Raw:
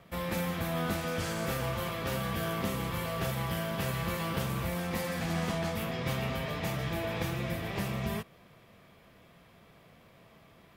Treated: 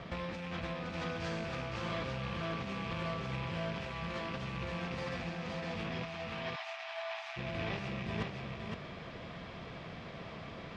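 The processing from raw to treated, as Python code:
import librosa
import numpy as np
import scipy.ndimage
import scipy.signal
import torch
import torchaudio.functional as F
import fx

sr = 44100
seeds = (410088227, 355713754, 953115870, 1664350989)

y = fx.rattle_buzz(x, sr, strikes_db=-35.0, level_db=-29.0)
y = scipy.signal.sosfilt(scipy.signal.butter(4, 5500.0, 'lowpass', fs=sr, output='sos'), y)
y = fx.over_compress(y, sr, threshold_db=-42.0, ratio=-1.0)
y = fx.brickwall_highpass(y, sr, low_hz=620.0, at=(6.03, 7.36), fade=0.02)
y = y + 10.0 ** (-4.0 / 20.0) * np.pad(y, (int(514 * sr / 1000.0), 0))[:len(y)]
y = F.gain(torch.from_numpy(y), 2.0).numpy()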